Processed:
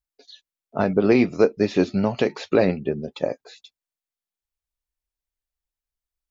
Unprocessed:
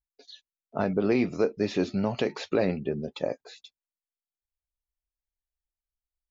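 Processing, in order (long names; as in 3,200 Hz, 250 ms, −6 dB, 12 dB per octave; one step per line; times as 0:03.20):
expander for the loud parts 1.5 to 1, over −33 dBFS
level +8.5 dB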